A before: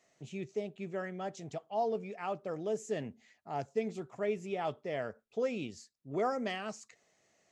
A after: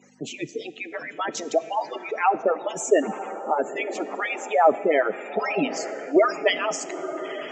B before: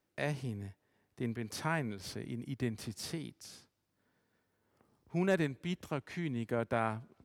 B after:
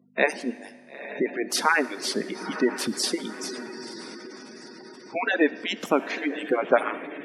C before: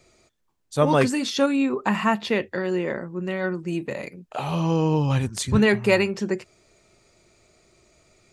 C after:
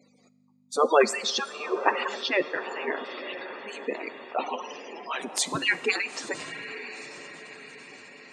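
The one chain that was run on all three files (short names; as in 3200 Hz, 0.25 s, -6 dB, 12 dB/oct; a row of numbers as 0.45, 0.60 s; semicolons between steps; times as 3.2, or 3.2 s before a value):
median-filter separation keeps percussive; hum 50 Hz, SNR 21 dB; HPF 200 Hz 24 dB/oct; diffused feedback echo 0.936 s, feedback 49%, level -11 dB; spectral gate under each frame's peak -20 dB strong; Schroeder reverb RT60 1.8 s, combs from 25 ms, DRR 16 dB; normalise peaks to -6 dBFS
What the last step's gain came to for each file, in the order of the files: +19.5, +17.0, +3.0 dB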